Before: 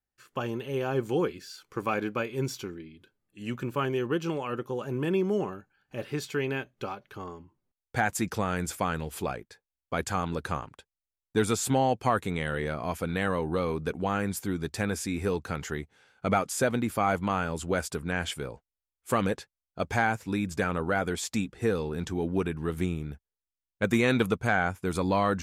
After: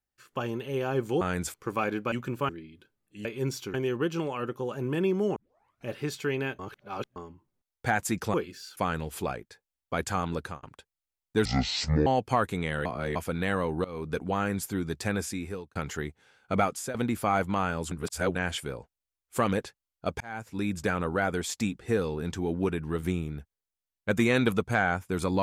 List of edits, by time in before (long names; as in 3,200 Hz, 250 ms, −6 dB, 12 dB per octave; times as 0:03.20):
0:01.21–0:01.64: swap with 0:08.44–0:08.77
0:02.22–0:02.71: swap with 0:03.47–0:03.84
0:05.46: tape start 0.50 s
0:06.69–0:07.26: reverse
0:10.38–0:10.63: fade out
0:11.45–0:11.80: play speed 57%
0:12.59–0:12.89: reverse
0:13.58–0:13.87: fade in, from −20 dB
0:14.95–0:15.49: fade out
0:16.33–0:16.68: fade out equal-power, to −15.5 dB
0:17.65–0:18.09: reverse
0:19.94–0:20.43: fade in